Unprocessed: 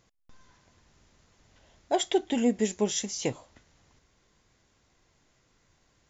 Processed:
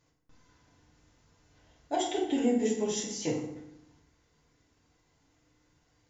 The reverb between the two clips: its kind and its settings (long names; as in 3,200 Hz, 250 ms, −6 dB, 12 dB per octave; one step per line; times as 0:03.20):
feedback delay network reverb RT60 0.85 s, low-frequency decay 1.3×, high-frequency decay 0.65×, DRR −5 dB
level −9 dB